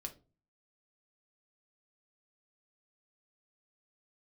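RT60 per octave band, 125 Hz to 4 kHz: 0.60, 0.50, 0.40, 0.30, 0.25, 0.20 seconds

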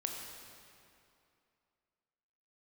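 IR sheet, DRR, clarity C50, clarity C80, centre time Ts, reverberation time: 1.0 dB, 2.0 dB, 3.0 dB, 87 ms, 2.6 s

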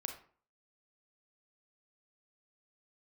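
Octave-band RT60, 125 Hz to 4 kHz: 0.45, 0.50, 0.45, 0.45, 0.40, 0.30 seconds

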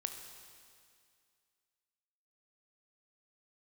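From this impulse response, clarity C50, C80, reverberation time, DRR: 6.5 dB, 7.5 dB, 2.2 s, 5.5 dB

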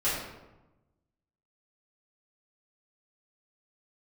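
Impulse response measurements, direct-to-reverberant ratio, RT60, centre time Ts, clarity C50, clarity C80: −12.0 dB, 1.0 s, 66 ms, 1.0 dB, 4.0 dB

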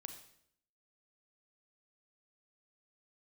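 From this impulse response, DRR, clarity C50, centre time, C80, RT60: 5.5 dB, 8.0 dB, 17 ms, 10.5 dB, 0.70 s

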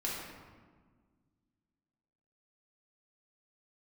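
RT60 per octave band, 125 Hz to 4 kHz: 2.4, 2.4, 1.6, 1.5, 1.2, 0.90 seconds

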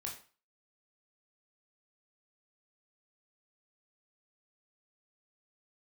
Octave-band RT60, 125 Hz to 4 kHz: 0.35, 0.35, 0.35, 0.40, 0.35, 0.35 seconds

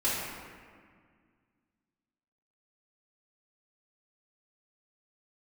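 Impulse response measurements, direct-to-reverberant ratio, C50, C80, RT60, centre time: −10.5 dB, −1.0 dB, 1.0 dB, 1.9 s, 110 ms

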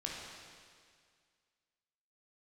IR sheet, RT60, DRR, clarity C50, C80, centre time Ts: 2.0 s, −3.0 dB, −0.5 dB, 1.5 dB, 105 ms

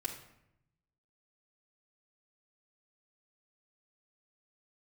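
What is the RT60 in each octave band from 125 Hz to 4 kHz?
1.4, 1.0, 0.80, 0.75, 0.75, 0.55 seconds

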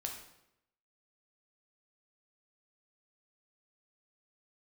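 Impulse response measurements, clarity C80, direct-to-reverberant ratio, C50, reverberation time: 8.5 dB, 1.5 dB, 5.5 dB, 0.80 s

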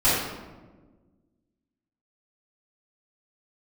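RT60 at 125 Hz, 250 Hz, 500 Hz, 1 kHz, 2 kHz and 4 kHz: 1.9, 2.0, 1.6, 1.1, 0.90, 0.70 seconds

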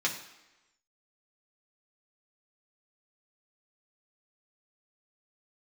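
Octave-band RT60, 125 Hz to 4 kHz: 0.80, 0.95, 1.0, 1.1, 1.0, 0.95 seconds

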